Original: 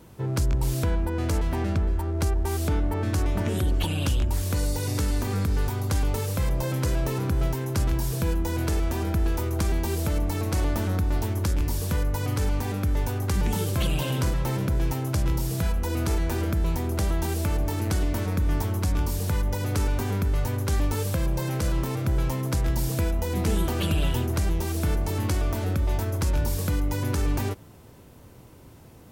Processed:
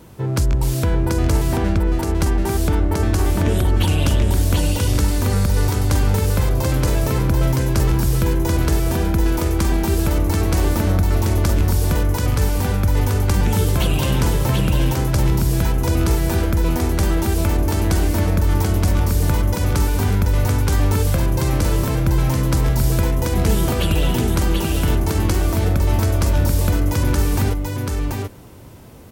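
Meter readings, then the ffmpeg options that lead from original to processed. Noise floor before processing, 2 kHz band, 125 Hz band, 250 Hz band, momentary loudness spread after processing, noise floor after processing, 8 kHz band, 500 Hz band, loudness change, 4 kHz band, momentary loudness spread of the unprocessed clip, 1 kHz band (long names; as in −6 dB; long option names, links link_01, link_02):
−48 dBFS, +7.5 dB, +8.0 dB, +8.0 dB, 2 LU, −23 dBFS, +7.5 dB, +7.5 dB, +7.5 dB, +7.5 dB, 1 LU, +7.5 dB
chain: -af "aecho=1:1:735:0.668,volume=6dB"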